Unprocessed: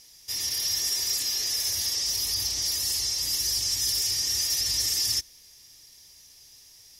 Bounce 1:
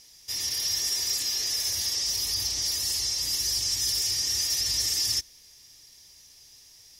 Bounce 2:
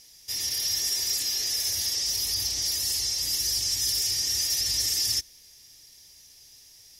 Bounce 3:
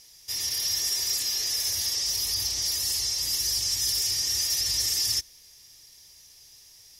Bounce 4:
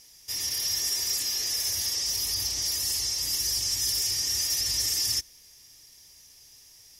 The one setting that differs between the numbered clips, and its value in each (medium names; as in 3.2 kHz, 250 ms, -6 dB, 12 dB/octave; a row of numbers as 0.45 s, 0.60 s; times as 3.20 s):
peaking EQ, frequency: 12 kHz, 1.1 kHz, 250 Hz, 4 kHz